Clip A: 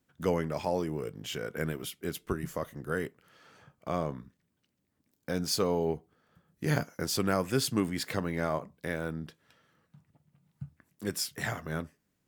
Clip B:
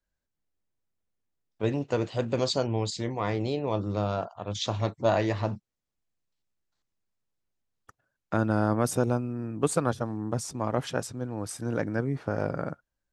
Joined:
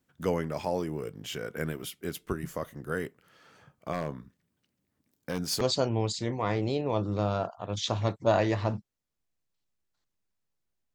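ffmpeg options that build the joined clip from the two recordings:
-filter_complex "[0:a]asettb=1/sr,asplit=3[a][b][c];[a]atrim=end=3.934[d];[b]atrim=start=3.93:end=5.61,asetpts=PTS-STARTPTS,afade=t=in:d=0.004:c=qsin,afade=t=out:st=1.676:d=0.004:c=qsin,aeval=exprs='0.0794*(abs(mod(val(0)/0.0794+3,4)-2)-1)':c=same[e];[c]atrim=start=5.606[f];[d][e]acrossfade=d=0.004:c1=hsin:c2=qsin[g];[g][f]acrossfade=d=0.004:c1=qsin:c2=hsin,apad=whole_dur=10.94,atrim=end=10.94,atrim=end=5.612[h];[1:a]atrim=start=2.388:end=7.72[i];[h][i]acrossfade=d=0.004:c1=hsin:c2=hsin"

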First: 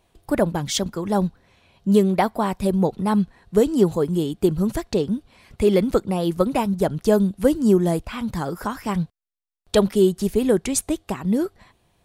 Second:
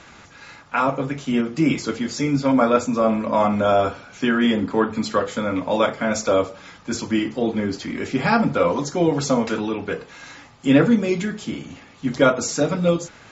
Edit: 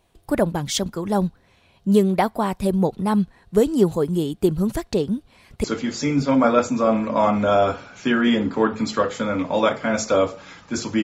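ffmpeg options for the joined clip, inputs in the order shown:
-filter_complex "[0:a]apad=whole_dur=11.03,atrim=end=11.03,atrim=end=5.642[a];[1:a]atrim=start=1.808:end=7.2[b];[a][b]acrossfade=d=0.004:c1=hsin:c2=hsin,asplit=2[c][d];[d]afade=t=in:st=5.18:d=0.01,afade=t=out:st=5.64:d=0.01,aecho=0:1:590|1180:0.133352|0.0200028[e];[c][e]amix=inputs=2:normalize=0"

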